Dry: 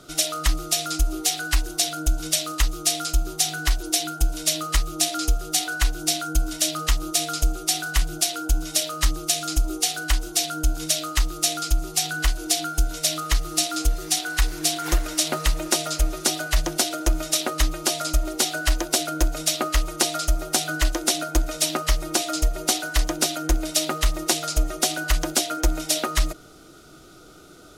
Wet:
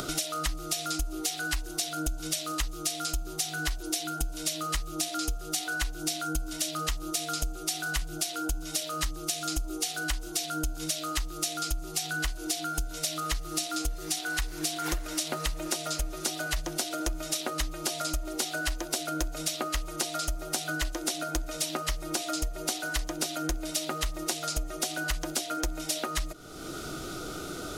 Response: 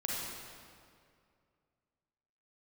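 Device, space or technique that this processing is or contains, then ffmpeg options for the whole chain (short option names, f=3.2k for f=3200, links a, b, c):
upward and downward compression: -af "acompressor=mode=upward:threshold=-20dB:ratio=2.5,acompressor=threshold=-23dB:ratio=6,volume=-4dB"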